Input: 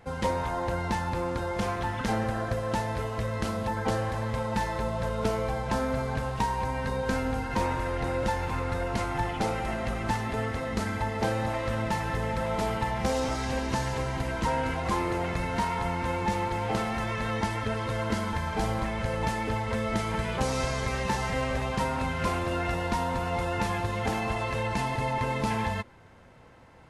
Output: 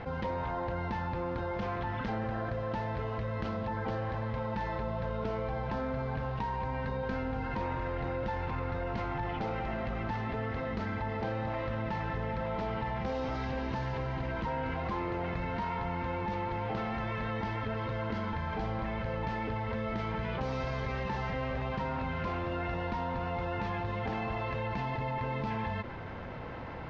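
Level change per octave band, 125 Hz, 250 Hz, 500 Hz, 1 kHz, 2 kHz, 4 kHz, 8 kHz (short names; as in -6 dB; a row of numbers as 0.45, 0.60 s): -4.0 dB, -5.0 dB, -5.0 dB, -5.5 dB, -6.0 dB, -9.5 dB, under -20 dB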